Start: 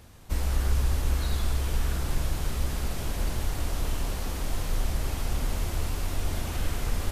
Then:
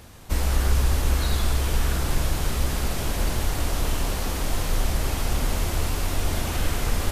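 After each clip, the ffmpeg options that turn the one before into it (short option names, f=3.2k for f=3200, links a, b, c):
-af "lowshelf=f=180:g=-3.5,volume=7dB"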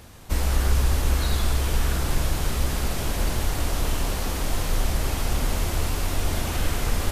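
-af anull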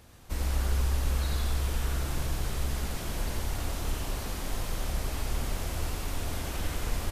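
-af "aecho=1:1:89:0.631,volume=-9dB"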